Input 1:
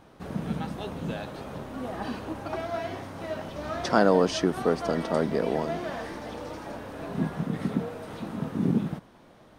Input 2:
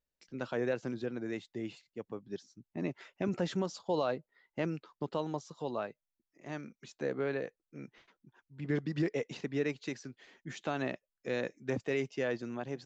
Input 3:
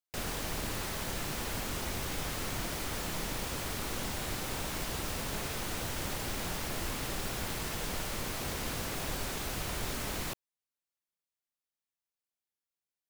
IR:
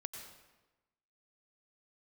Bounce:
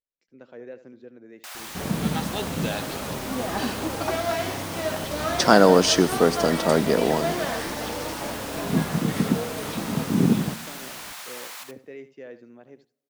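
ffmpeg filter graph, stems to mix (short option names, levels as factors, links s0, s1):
-filter_complex "[0:a]highshelf=f=3400:g=10.5,adelay=1550,volume=1.41,asplit=2[s0][s1];[s1]volume=0.473[s2];[1:a]equalizer=f=250:t=o:w=1:g=6,equalizer=f=500:t=o:w=1:g=9,equalizer=f=2000:t=o:w=1:g=6,volume=0.141,asplit=3[s3][s4][s5];[s4]volume=0.0841[s6];[s5]volume=0.224[s7];[2:a]highpass=f=770:w=0.5412,highpass=f=770:w=1.3066,adelay=1300,volume=0.891,asplit=3[s8][s9][s10];[s9]volume=0.2[s11];[s10]volume=0.531[s12];[3:a]atrim=start_sample=2205[s13];[s2][s6][s11]amix=inputs=3:normalize=0[s14];[s14][s13]afir=irnorm=-1:irlink=0[s15];[s7][s12]amix=inputs=2:normalize=0,aecho=0:1:76:1[s16];[s0][s3][s8][s15][s16]amix=inputs=5:normalize=0"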